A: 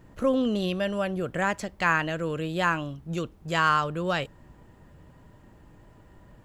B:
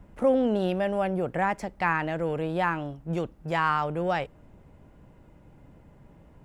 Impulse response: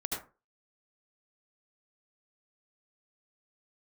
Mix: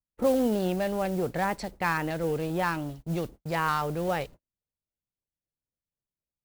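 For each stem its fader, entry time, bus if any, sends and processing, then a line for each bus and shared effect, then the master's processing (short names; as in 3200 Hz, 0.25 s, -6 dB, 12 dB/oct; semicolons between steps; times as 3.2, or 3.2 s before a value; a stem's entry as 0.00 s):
-11.5 dB, 0.00 s, no send, bell 1400 Hz -8.5 dB 1.9 oct; sample leveller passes 5; LFO band-pass square 3.8 Hz 530–4200 Hz
-2.5 dB, 0.00 s, no send, modulation noise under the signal 20 dB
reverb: off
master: gate -44 dBFS, range -47 dB; low shelf 130 Hz +4.5 dB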